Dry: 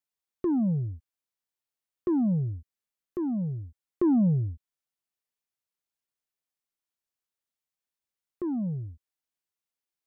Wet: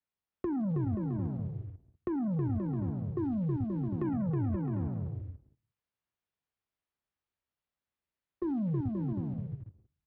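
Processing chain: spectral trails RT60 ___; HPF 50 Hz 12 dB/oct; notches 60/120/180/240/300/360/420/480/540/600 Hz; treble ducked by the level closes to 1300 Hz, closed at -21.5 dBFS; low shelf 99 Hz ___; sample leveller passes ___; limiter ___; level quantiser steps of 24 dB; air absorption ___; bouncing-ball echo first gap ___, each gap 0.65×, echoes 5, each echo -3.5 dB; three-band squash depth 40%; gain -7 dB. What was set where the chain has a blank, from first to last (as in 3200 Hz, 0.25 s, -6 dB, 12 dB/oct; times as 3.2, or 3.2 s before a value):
0.61 s, +12 dB, 2, -18.5 dBFS, 280 m, 0.32 s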